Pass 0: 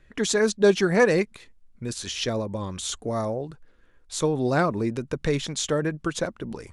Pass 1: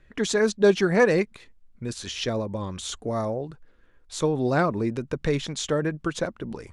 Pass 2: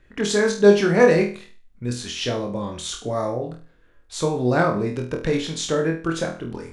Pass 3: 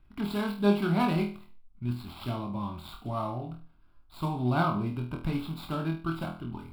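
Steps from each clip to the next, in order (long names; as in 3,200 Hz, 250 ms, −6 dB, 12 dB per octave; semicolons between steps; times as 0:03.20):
high-shelf EQ 6,300 Hz −7 dB
flutter between parallel walls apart 4.2 metres, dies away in 0.38 s; level +1 dB
running median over 15 samples; phaser with its sweep stopped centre 1,800 Hz, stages 6; level −2.5 dB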